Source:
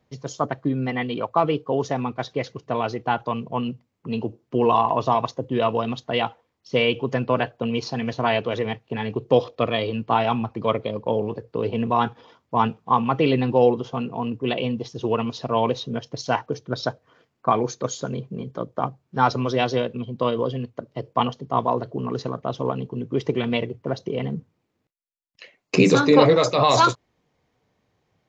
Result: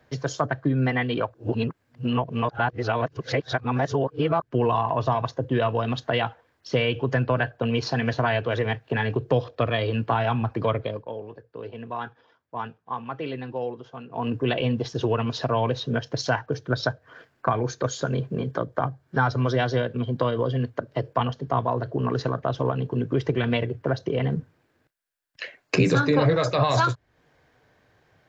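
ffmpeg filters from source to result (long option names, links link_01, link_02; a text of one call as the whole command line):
ffmpeg -i in.wav -filter_complex "[0:a]asettb=1/sr,asplit=3[link_01][link_02][link_03];[link_01]atrim=end=18.584[link_04];[link_02]atrim=start=18.58:end=20.76,asetpts=PTS-STARTPTS,afade=type=in:duration=0.004:curve=qsin,afade=type=out:start_time=2.176:duration=0.004:curve=qsin,bandreject=frequency=2600:width=11[link_05];[link_03]atrim=start=20.756[link_06];[link_04][link_05]acrossfade=duration=0.004:curve1=hsin:curve2=qsin[link_07];[link_07][link_06]acrossfade=duration=0.004:curve1=qsin:curve2=hsin,asplit=5[link_08][link_09][link_10][link_11][link_12];[link_08]atrim=end=1.342[link_13];[link_09]atrim=start=1.338:end=4.422,asetpts=PTS-STARTPTS,areverse[link_14];[link_10]atrim=start=4.418:end=11.06,asetpts=PTS-STARTPTS,afade=type=out:start_time=6.362:duration=0.28:silence=0.112202[link_15];[link_11]atrim=start=11.06:end=14.09,asetpts=PTS-STARTPTS,volume=-19dB[link_16];[link_12]atrim=start=14.09,asetpts=PTS-STARTPTS,afade=type=in:duration=0.28:silence=0.112202[link_17];[link_13][link_14]acrossfade=duration=0.004:curve1=hsin:curve2=hsin[link_18];[link_15][link_16][link_17]concat=n=3:v=0:a=1[link_19];[link_18][link_19]acrossfade=duration=0.004:curve1=hsin:curve2=hsin,equalizer=frequency=200:width_type=o:width=0.33:gain=-8,equalizer=frequency=630:width_type=o:width=0.33:gain=3,equalizer=frequency=1600:width_type=o:width=0.33:gain=12,equalizer=frequency=6300:width_type=o:width=0.33:gain=-3,acrossover=split=150[link_20][link_21];[link_21]acompressor=threshold=-32dB:ratio=3[link_22];[link_20][link_22]amix=inputs=2:normalize=0,volume=7dB" out.wav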